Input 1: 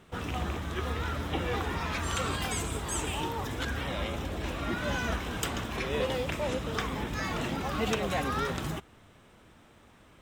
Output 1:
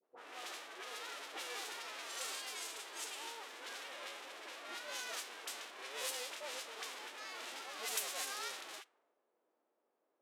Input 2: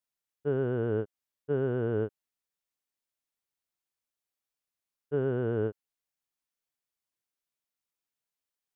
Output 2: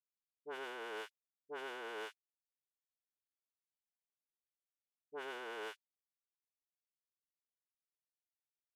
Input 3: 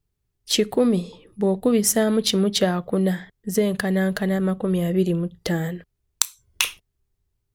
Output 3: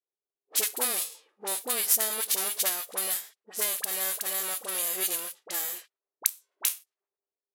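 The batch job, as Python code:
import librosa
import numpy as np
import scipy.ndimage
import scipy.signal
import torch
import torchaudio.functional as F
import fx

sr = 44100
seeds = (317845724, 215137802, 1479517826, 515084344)

y = fx.envelope_flatten(x, sr, power=0.3)
y = fx.peak_eq(y, sr, hz=13000.0, db=15.0, octaves=1.5)
y = fx.env_lowpass(y, sr, base_hz=520.0, full_db=-16.0)
y = scipy.signal.sosfilt(scipy.signal.butter(4, 360.0, 'highpass', fs=sr, output='sos'), y)
y = fx.dispersion(y, sr, late='highs', ms=44.0, hz=1000.0)
y = y * librosa.db_to_amplitude(-13.0)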